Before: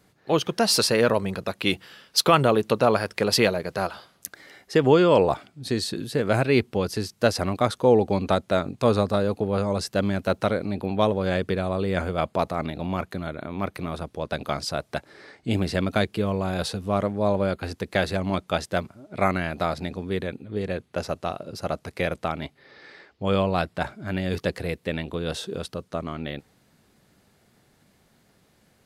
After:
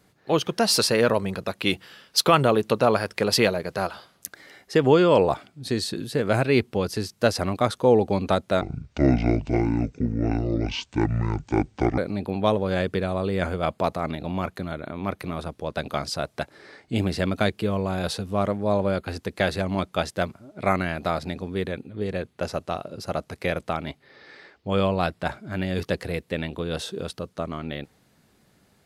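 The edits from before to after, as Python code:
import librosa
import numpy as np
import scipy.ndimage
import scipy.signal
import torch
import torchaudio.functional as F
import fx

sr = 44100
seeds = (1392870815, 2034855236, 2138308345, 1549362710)

y = fx.edit(x, sr, fx.speed_span(start_s=8.61, length_s=1.92, speed=0.57), tone=tone)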